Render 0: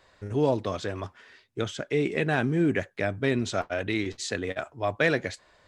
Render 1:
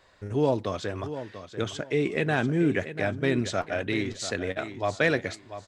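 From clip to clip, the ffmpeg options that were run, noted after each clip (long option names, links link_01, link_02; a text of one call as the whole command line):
ffmpeg -i in.wav -af "aecho=1:1:690|1380|2070:0.266|0.0612|0.0141" out.wav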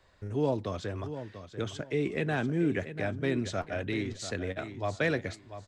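ffmpeg -i in.wav -filter_complex "[0:a]lowshelf=frequency=180:gain=9.5,acrossover=split=190|640|2500[link_01][link_02][link_03][link_04];[link_01]alimiter=level_in=4.5dB:limit=-24dB:level=0:latency=1,volume=-4.5dB[link_05];[link_05][link_02][link_03][link_04]amix=inputs=4:normalize=0,volume=-6dB" out.wav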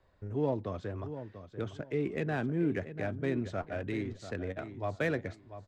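ffmpeg -i in.wav -filter_complex "[0:a]lowpass=frequency=3100:poles=1,asplit=2[link_01][link_02];[link_02]adynamicsmooth=sensitivity=7.5:basefreq=1400,volume=-1.5dB[link_03];[link_01][link_03]amix=inputs=2:normalize=0,volume=-7.5dB" out.wav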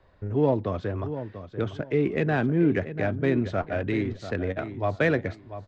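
ffmpeg -i in.wav -af "lowpass=4700,volume=8.5dB" out.wav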